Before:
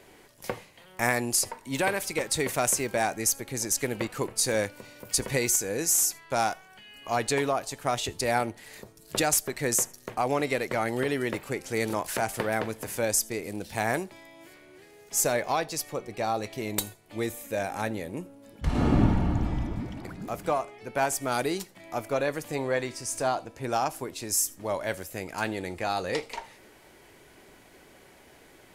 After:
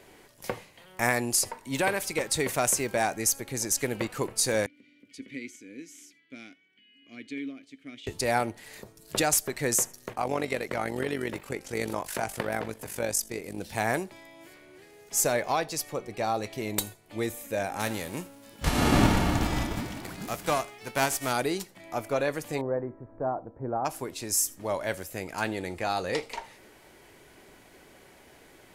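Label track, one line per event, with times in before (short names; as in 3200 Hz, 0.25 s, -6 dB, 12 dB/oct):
4.660000	8.070000	vowel filter i
10.130000	13.580000	AM modulator 48 Hz, depth 50%
17.790000	21.310000	spectral whitening exponent 0.6
22.610000	23.850000	Gaussian blur sigma 7.8 samples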